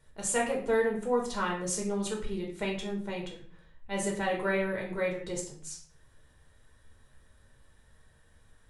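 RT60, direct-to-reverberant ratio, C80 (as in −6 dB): 0.50 s, −2.0 dB, 11.0 dB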